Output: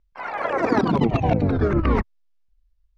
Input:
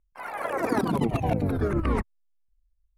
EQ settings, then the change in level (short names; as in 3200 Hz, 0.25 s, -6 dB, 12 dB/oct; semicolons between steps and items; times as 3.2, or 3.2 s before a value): LPF 5600 Hz 24 dB/oct; +5.5 dB